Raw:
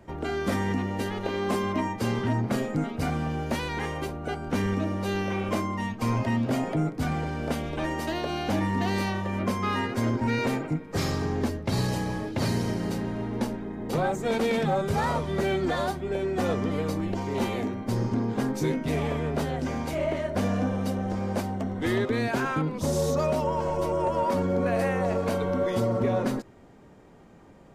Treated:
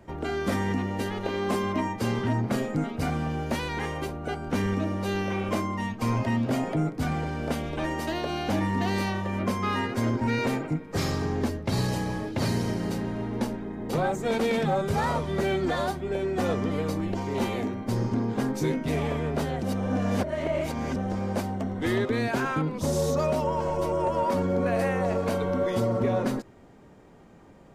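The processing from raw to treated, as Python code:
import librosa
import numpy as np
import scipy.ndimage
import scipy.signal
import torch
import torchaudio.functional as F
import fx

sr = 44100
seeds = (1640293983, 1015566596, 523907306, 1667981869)

y = fx.edit(x, sr, fx.reverse_span(start_s=19.63, length_s=1.33), tone=tone)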